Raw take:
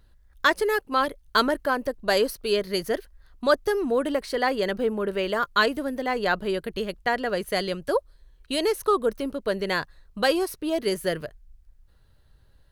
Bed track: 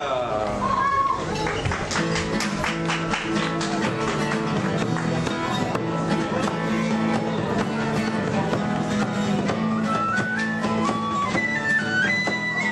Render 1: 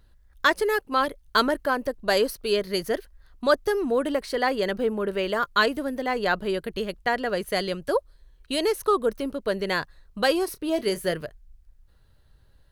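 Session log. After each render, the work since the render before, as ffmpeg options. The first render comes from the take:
ffmpeg -i in.wav -filter_complex "[0:a]asettb=1/sr,asplit=3[link_01][link_02][link_03];[link_01]atrim=end=10.454[link_04];[link_02]atrim=start=10.45:end=11.14,asetpts=PTS-STARTPTS,afade=type=in:duration=0.004:curve=qsin,afade=type=out:start_time=0.686:duration=0.004:curve=qsin,asplit=2[link_05][link_06];[link_06]adelay=28,volume=-13dB[link_07];[link_05][link_07]amix=inputs=2:normalize=0,atrim=end_sample=30429[link_08];[link_03]atrim=start=11.136[link_09];[link_04][link_08]acrossfade=duration=0.004:curve1=hsin:curve2=qsin[link_10];[link_10][link_09]acrossfade=duration=0.004:curve1=qsin:curve2=hsin" out.wav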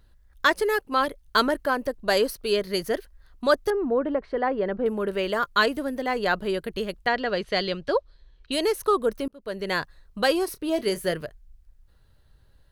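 ffmpeg -i in.wav -filter_complex "[0:a]asettb=1/sr,asplit=3[link_01][link_02][link_03];[link_01]atrim=end=3.704[link_04];[link_02]atrim=start=3.7:end=4.86,asetpts=PTS-STARTPTS,afade=type=in:duration=0.004:curve=qsin,afade=type=out:start_time=1.156:duration=0.004:curve=qsin,lowpass=1400[link_05];[link_03]atrim=start=4.856[link_06];[link_04][link_05]acrossfade=duration=0.004:curve1=hsin:curve2=qsin[link_07];[link_07][link_06]acrossfade=duration=0.004:curve1=qsin:curve2=hsin,asettb=1/sr,asplit=3[link_08][link_09][link_10];[link_08]atrim=end=7.074[link_11];[link_09]atrim=start=7.07:end=8.52,asetpts=PTS-STARTPTS,afade=type=in:duration=0.004:curve=qsin,afade=type=out:start_time=1.446:duration=0.004:curve=qsin,lowpass=frequency=4200:width_type=q:width=1.5[link_12];[link_10]atrim=start=8.516[link_13];[link_11][link_12]acrossfade=duration=0.004:curve1=hsin:curve2=qsin[link_14];[link_14][link_13]acrossfade=duration=0.004:curve1=qsin:curve2=hsin,asplit=2[link_15][link_16];[link_15]atrim=end=9.28,asetpts=PTS-STARTPTS,afade=type=out:start_time=9.276:duration=0.004:curve=hsin[link_17];[link_16]atrim=start=9.28,asetpts=PTS-STARTPTS,afade=type=in:duration=0.48[link_18];[link_17][link_18]concat=n=2:v=0:a=1" out.wav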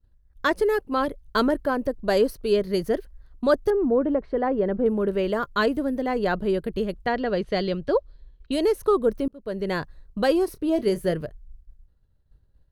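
ffmpeg -i in.wav -af "agate=range=-33dB:threshold=-48dB:ratio=3:detection=peak,tiltshelf=frequency=690:gain=6.5" out.wav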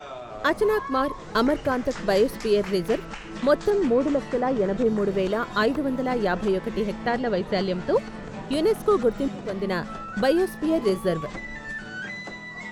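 ffmpeg -i in.wav -i bed.wav -filter_complex "[1:a]volume=-13dB[link_01];[0:a][link_01]amix=inputs=2:normalize=0" out.wav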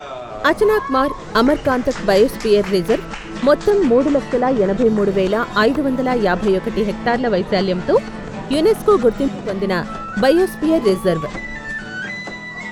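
ffmpeg -i in.wav -af "volume=7.5dB,alimiter=limit=-2dB:level=0:latency=1" out.wav

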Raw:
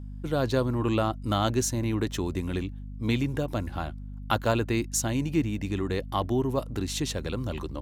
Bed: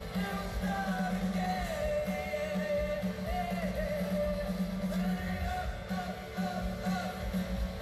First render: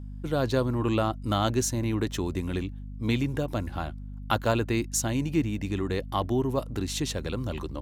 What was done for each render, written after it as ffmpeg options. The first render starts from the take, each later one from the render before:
ffmpeg -i in.wav -af anull out.wav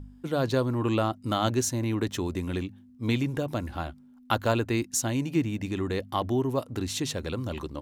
ffmpeg -i in.wav -af "bandreject=frequency=50:width_type=h:width=4,bandreject=frequency=100:width_type=h:width=4,bandreject=frequency=150:width_type=h:width=4,bandreject=frequency=200:width_type=h:width=4" out.wav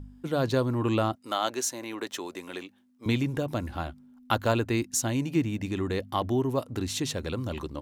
ffmpeg -i in.wav -filter_complex "[0:a]asettb=1/sr,asplit=3[link_01][link_02][link_03];[link_01]atrim=end=1.154[link_04];[link_02]atrim=start=1.15:end=3.06,asetpts=PTS-STARTPTS,afade=type=in:duration=0.004:curve=qsin,afade=type=out:start_time=1.906:duration=0.004:curve=qsin,highpass=470[link_05];[link_03]atrim=start=3.056[link_06];[link_04][link_05]acrossfade=duration=0.004:curve1=hsin:curve2=qsin[link_07];[link_07][link_06]acrossfade=duration=0.004:curve1=qsin:curve2=hsin" out.wav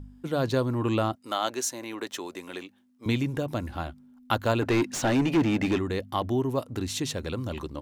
ffmpeg -i in.wav -filter_complex "[0:a]asplit=3[link_01][link_02][link_03];[link_01]afade=type=out:start_time=4.61:duration=0.02[link_04];[link_02]asplit=2[link_05][link_06];[link_06]highpass=frequency=720:poles=1,volume=26dB,asoftclip=type=tanh:threshold=-14dB[link_07];[link_05][link_07]amix=inputs=2:normalize=0,lowpass=frequency=1500:poles=1,volume=-6dB,afade=type=in:start_time=4.61:duration=0.02,afade=type=out:start_time=5.77:duration=0.02[link_08];[link_03]afade=type=in:start_time=5.77:duration=0.02[link_09];[link_04][link_08][link_09]amix=inputs=3:normalize=0" out.wav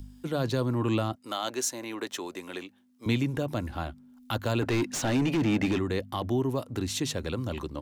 ffmpeg -i in.wav -filter_complex "[0:a]acrossover=split=200|2900[link_01][link_02][link_03];[link_02]alimiter=limit=-21.5dB:level=0:latency=1:release=16[link_04];[link_03]acompressor=mode=upward:threshold=-57dB:ratio=2.5[link_05];[link_01][link_04][link_05]amix=inputs=3:normalize=0" out.wav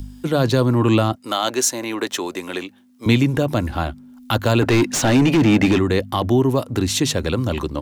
ffmpeg -i in.wav -af "volume=11dB" out.wav

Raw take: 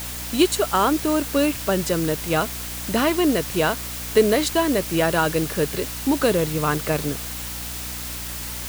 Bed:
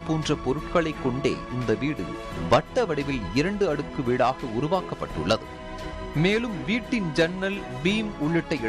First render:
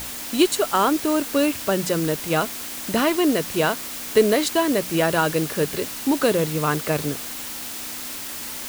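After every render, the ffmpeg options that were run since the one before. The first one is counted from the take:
ffmpeg -i in.wav -af "bandreject=frequency=60:width_type=h:width=6,bandreject=frequency=120:width_type=h:width=6,bandreject=frequency=180:width_type=h:width=6" out.wav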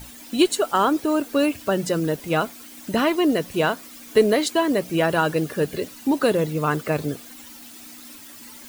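ffmpeg -i in.wav -af "afftdn=noise_reduction=13:noise_floor=-33" out.wav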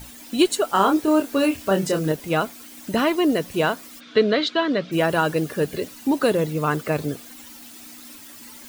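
ffmpeg -i in.wav -filter_complex "[0:a]asettb=1/sr,asplit=3[link_01][link_02][link_03];[link_01]atrim=end=0.704[link_04];[link_02]atrim=start=0.7:end=2.12,asetpts=PTS-STARTPTS,afade=type=in:duration=0.004:curve=qsin,afade=type=out:start_time=1.416:duration=0.004:curve=qsin,asplit=2[link_05][link_06];[link_06]adelay=26,volume=-5dB[link_07];[link_05][link_07]amix=inputs=2:normalize=0,atrim=end_sample=62622[link_08];[link_03]atrim=start=2.116[link_09];[link_04][link_08]acrossfade=duration=0.004:curve1=hsin:curve2=qsin[link_10];[link_10][link_09]acrossfade=duration=0.004:curve1=qsin:curve2=hsin,asplit=3[link_11][link_12][link_13];[link_11]afade=type=out:start_time=3.99:duration=0.02[link_14];[link_12]highpass=150,equalizer=frequency=160:width_type=q:width=4:gain=5,equalizer=frequency=370:width_type=q:width=4:gain=-4,equalizer=frequency=840:width_type=q:width=4:gain=-7,equalizer=frequency=1400:width_type=q:width=4:gain=8,equalizer=frequency=3600:width_type=q:width=4:gain=8,lowpass=frequency=4700:width=0.5412,lowpass=frequency=4700:width=1.3066,afade=type=in:start_time=3.99:duration=0.02,afade=type=out:start_time=4.91:duration=0.02[link_15];[link_13]afade=type=in:start_time=4.91:duration=0.02[link_16];[link_14][link_15][link_16]amix=inputs=3:normalize=0" out.wav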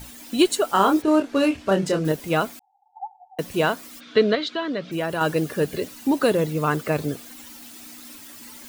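ffmpeg -i in.wav -filter_complex "[0:a]asplit=3[link_01][link_02][link_03];[link_01]afade=type=out:start_time=1.01:duration=0.02[link_04];[link_02]adynamicsmooth=sensitivity=6:basefreq=4000,afade=type=in:start_time=1.01:duration=0.02,afade=type=out:start_time=2.04:duration=0.02[link_05];[link_03]afade=type=in:start_time=2.04:duration=0.02[link_06];[link_04][link_05][link_06]amix=inputs=3:normalize=0,asettb=1/sr,asplit=3[link_07][link_08][link_09];[link_07]atrim=end=2.594[link_10];[link_08]atrim=start=2.59:end=3.39,asetpts=PTS-STARTPTS,afade=type=in:duration=0.004:curve=qsin,afade=type=out:start_time=0.796:duration=0.004:curve=qsin,asuperpass=centerf=810:order=20:qfactor=5.1[link_11];[link_09]atrim=start=3.386[link_12];[link_10][link_11]acrossfade=duration=0.004:curve1=hsin:curve2=qsin[link_13];[link_13][link_12]acrossfade=duration=0.004:curve1=qsin:curve2=hsin,asettb=1/sr,asplit=3[link_14][link_15][link_16];[link_14]atrim=end=4.354[link_17];[link_15]atrim=start=4.35:end=5.21,asetpts=PTS-STARTPTS,afade=type=in:duration=0.004:curve=qsin,afade=type=out:start_time=0.856:duration=0.004:curve=qsin,acompressor=threshold=-32dB:ratio=1.5:attack=3.2:release=140:knee=1:detection=peak[link_18];[link_16]atrim=start=5.206[link_19];[link_17][link_18]acrossfade=duration=0.004:curve1=hsin:curve2=qsin[link_20];[link_20][link_19]acrossfade=duration=0.004:curve1=qsin:curve2=hsin" out.wav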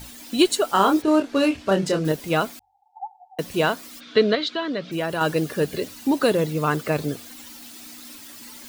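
ffmpeg -i in.wav -af "equalizer=frequency=4300:width=1.3:gain=3,bandreject=frequency=47.77:width_type=h:width=4,bandreject=frequency=95.54:width_type=h:width=4" out.wav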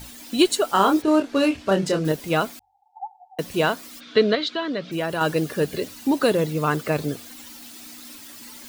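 ffmpeg -i in.wav -af anull out.wav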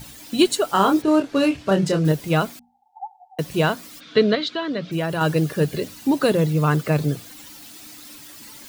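ffmpeg -i in.wav -af "equalizer=frequency=140:width_type=o:width=0.96:gain=9,bandreject=frequency=60:width_type=h:width=6,bandreject=frequency=120:width_type=h:width=6,bandreject=frequency=180:width_type=h:width=6,bandreject=frequency=240:width_type=h:width=6" out.wav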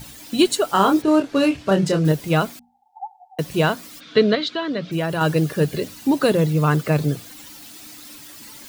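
ffmpeg -i in.wav -af "volume=1dB,alimiter=limit=-3dB:level=0:latency=1" out.wav

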